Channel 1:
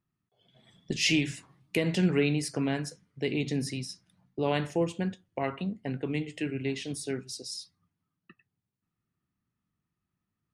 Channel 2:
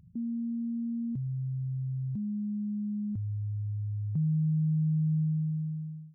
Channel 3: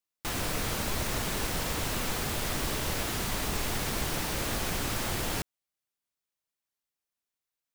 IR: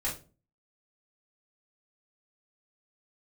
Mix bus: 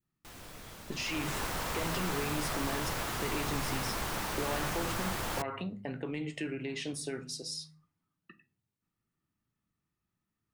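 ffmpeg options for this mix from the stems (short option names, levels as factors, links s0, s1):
-filter_complex "[0:a]bandreject=f=50:t=h:w=6,bandreject=f=100:t=h:w=6,bandreject=f=150:t=h:w=6,bandreject=f=200:t=h:w=6,bandreject=f=250:t=h:w=6,alimiter=level_in=1.26:limit=0.0631:level=0:latency=1:release=83,volume=0.794,acompressor=threshold=0.02:ratio=3,volume=0.841,asplit=2[s0][s1];[s1]volume=0.2[s2];[1:a]acompressor=threshold=0.00794:ratio=6,adelay=1700,volume=0.237[s3];[2:a]volume=0.531,afade=t=in:st=0.97:d=0.43:silence=0.251189[s4];[3:a]atrim=start_sample=2205[s5];[s2][s5]afir=irnorm=-1:irlink=0[s6];[s0][s3][s4][s6]amix=inputs=4:normalize=0,adynamicequalizer=threshold=0.002:dfrequency=1100:dqfactor=0.89:tfrequency=1100:tqfactor=0.89:attack=5:release=100:ratio=0.375:range=3.5:mode=boostabove:tftype=bell,asoftclip=type=tanh:threshold=0.112"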